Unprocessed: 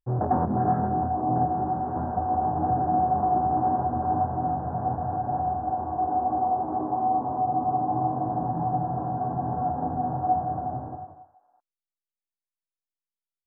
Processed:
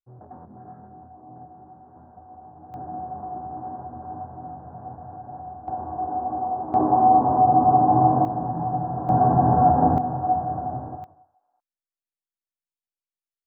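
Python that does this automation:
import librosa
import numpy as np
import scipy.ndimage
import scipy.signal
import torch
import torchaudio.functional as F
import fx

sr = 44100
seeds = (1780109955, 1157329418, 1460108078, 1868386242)

y = fx.gain(x, sr, db=fx.steps((0.0, -20.0), (2.74, -10.5), (5.68, -2.0), (6.74, 8.5), (8.25, 0.5), (9.09, 10.5), (9.98, 1.5), (11.04, -7.0)))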